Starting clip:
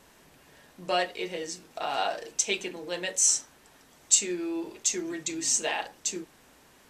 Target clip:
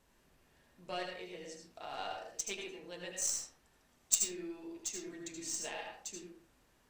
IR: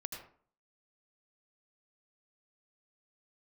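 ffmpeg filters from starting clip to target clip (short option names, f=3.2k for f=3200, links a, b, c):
-filter_complex "[0:a]lowshelf=f=94:g=11,aeval=exprs='0.531*(cos(1*acos(clip(val(0)/0.531,-1,1)))-cos(1*PI/2))+0.133*(cos(3*acos(clip(val(0)/0.531,-1,1)))-cos(3*PI/2))+0.00473*(cos(6*acos(clip(val(0)/0.531,-1,1)))-cos(6*PI/2))':c=same[a];[1:a]atrim=start_sample=2205,afade=t=out:st=0.32:d=0.01,atrim=end_sample=14553[b];[a][b]afir=irnorm=-1:irlink=0"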